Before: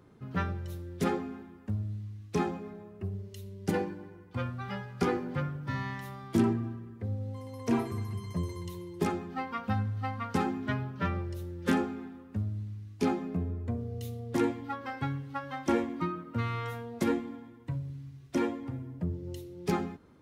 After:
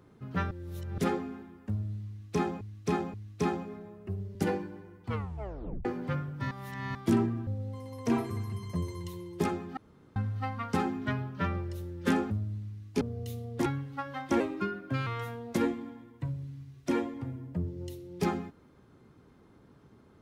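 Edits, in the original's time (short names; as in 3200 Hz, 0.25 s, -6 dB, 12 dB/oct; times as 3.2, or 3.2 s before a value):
0.51–0.98 reverse
2.08–2.61 loop, 3 plays
3.29–3.62 cut
4.33 tape stop 0.79 s
5.78–6.22 reverse
6.74–7.08 cut
9.38–9.77 room tone
11.91–12.35 cut
13.06–13.76 cut
14.41–15.03 cut
15.77–16.53 speed 114%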